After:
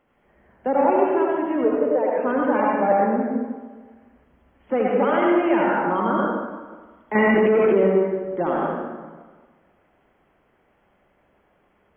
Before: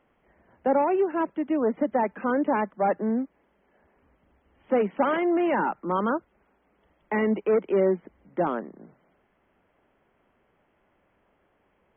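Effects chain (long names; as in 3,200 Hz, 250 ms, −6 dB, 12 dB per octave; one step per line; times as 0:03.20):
0:01.64–0:02.16: loudspeaker in its box 410–2,600 Hz, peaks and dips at 470 Hz +9 dB, 830 Hz −8 dB, 1,200 Hz −8 dB, 1,900 Hz −7 dB
convolution reverb RT60 1.4 s, pre-delay 68 ms, DRR −3.5 dB
0:07.15–0:07.88: envelope flattener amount 100%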